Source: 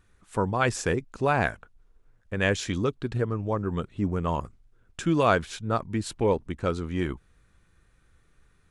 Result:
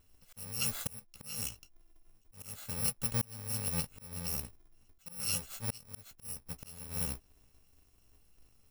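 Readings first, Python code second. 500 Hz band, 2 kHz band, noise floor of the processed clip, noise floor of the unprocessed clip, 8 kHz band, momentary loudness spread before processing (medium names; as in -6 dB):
-24.5 dB, -18.0 dB, -67 dBFS, -64 dBFS, +3.5 dB, 9 LU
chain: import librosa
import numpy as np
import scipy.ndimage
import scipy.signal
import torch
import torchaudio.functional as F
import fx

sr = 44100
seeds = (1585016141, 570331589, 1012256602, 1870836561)

y = fx.bit_reversed(x, sr, seeds[0], block=128)
y = fx.chorus_voices(y, sr, voices=6, hz=0.88, base_ms=14, depth_ms=4.8, mix_pct=25)
y = fx.auto_swell(y, sr, attack_ms=625.0)
y = F.gain(torch.from_numpy(y), -1.5).numpy()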